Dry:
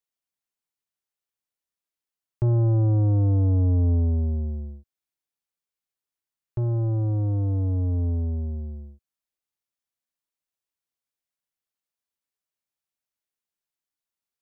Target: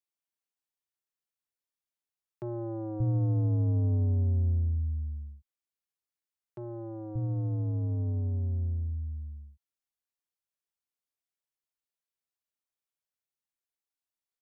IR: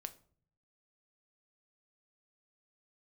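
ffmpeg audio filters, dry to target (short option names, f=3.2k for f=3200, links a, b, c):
-filter_complex "[0:a]acrossover=split=170[a][b];[a]adelay=580[c];[c][b]amix=inputs=2:normalize=0,volume=-5.5dB"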